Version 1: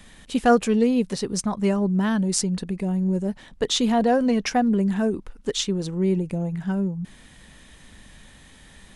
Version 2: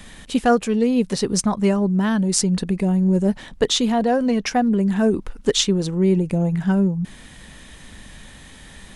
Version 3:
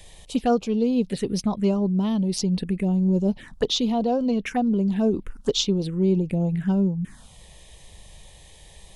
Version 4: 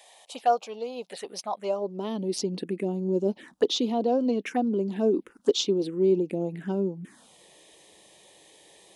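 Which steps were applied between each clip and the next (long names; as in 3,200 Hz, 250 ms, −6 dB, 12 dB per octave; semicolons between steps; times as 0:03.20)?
speech leveller 0.5 s; level +3.5 dB
phaser swept by the level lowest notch 210 Hz, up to 1,800 Hz, full sweep at −15.5 dBFS; level −3 dB
high-pass filter sweep 720 Hz → 320 Hz, 0:01.56–0:02.23; level −4 dB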